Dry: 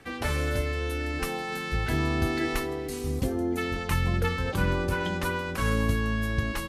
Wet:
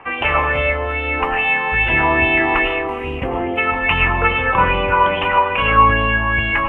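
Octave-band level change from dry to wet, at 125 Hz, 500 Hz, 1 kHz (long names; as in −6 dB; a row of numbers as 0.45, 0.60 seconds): +3.5, +10.5, +19.0 decibels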